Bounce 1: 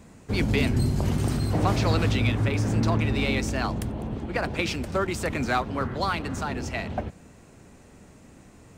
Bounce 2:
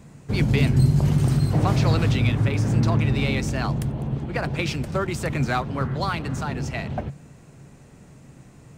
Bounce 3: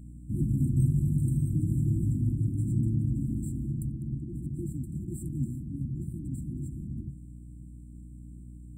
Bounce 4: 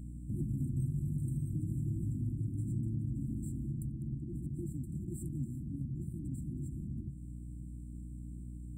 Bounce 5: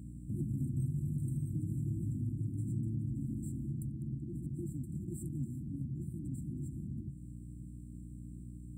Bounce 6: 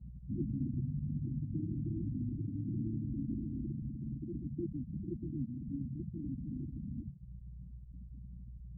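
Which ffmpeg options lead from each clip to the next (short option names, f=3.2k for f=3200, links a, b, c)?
-af "equalizer=f=140:t=o:w=0.35:g=14"
-af "aeval=exprs='val(0)+0.0141*(sin(2*PI*60*n/s)+sin(2*PI*2*60*n/s)/2+sin(2*PI*3*60*n/s)/3+sin(2*PI*4*60*n/s)/4+sin(2*PI*5*60*n/s)/5)':c=same,afftfilt=real='re*(1-between(b*sr/4096,360,7300))':imag='im*(1-between(b*sr/4096,360,7300))':win_size=4096:overlap=0.75,volume=-7dB"
-af "acompressor=threshold=-42dB:ratio=2,volume=1.5dB"
-af "highpass=71"
-af "afftfilt=real='re*gte(hypot(re,im),0.0316)':imag='im*gte(hypot(re,im),0.0316)':win_size=1024:overlap=0.75,equalizer=f=120:t=o:w=1.8:g=-12,volume=8.5dB"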